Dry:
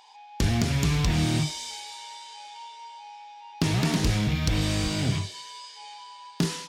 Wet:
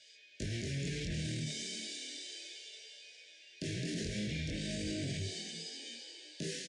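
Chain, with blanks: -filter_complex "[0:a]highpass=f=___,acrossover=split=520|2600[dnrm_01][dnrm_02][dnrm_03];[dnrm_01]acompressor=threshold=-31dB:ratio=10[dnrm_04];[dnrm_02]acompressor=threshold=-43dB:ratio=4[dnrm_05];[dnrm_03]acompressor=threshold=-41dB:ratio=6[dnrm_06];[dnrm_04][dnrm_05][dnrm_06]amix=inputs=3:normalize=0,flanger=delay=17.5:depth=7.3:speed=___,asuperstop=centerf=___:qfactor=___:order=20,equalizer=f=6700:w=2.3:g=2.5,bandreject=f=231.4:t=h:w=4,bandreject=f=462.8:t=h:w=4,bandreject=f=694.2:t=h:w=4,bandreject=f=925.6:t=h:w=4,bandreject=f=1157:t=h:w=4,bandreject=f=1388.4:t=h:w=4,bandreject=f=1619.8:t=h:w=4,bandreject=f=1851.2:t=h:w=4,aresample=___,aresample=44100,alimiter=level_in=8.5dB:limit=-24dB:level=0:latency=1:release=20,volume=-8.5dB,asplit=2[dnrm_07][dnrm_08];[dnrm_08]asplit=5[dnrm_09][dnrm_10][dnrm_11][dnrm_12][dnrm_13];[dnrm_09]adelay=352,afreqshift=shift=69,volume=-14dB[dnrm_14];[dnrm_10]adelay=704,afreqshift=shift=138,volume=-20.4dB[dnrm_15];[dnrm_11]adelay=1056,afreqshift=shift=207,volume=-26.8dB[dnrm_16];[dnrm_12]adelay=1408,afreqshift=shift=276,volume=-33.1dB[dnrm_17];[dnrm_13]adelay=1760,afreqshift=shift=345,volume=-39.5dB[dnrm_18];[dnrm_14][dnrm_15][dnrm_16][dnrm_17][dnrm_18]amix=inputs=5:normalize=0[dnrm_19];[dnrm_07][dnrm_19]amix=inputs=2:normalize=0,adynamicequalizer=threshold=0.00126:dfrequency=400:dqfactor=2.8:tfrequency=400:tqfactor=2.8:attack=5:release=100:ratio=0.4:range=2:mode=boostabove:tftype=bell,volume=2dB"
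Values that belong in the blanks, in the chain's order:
73, 0.34, 1000, 1.1, 22050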